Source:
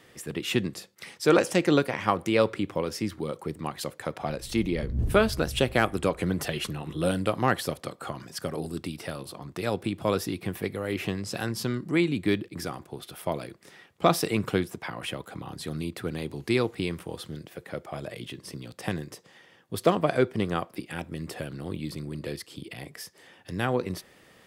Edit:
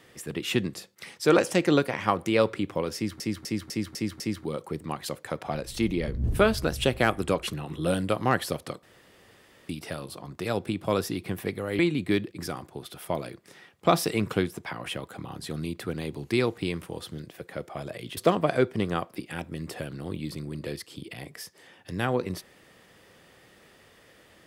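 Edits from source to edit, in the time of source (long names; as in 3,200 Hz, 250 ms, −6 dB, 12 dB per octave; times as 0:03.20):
0:02.95–0:03.20: repeat, 6 plays
0:06.18–0:06.60: remove
0:08.00–0:08.86: fill with room tone
0:10.96–0:11.96: remove
0:18.34–0:19.77: remove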